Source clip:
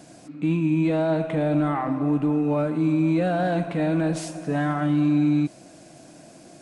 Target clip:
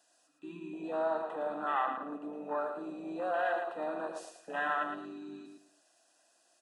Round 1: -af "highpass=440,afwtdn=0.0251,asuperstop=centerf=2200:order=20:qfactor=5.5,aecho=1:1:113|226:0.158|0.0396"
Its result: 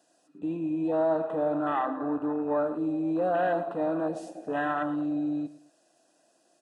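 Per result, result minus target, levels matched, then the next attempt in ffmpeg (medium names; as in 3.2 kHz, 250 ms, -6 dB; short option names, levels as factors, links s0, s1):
echo-to-direct -9.5 dB; 1 kHz band -3.5 dB
-af "highpass=440,afwtdn=0.0251,asuperstop=centerf=2200:order=20:qfactor=5.5,aecho=1:1:113|226|339:0.473|0.118|0.0296"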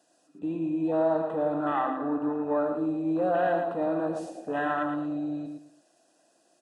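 1 kHz band -3.0 dB
-af "highpass=960,afwtdn=0.0251,asuperstop=centerf=2200:order=20:qfactor=5.5,aecho=1:1:113|226|339:0.473|0.118|0.0296"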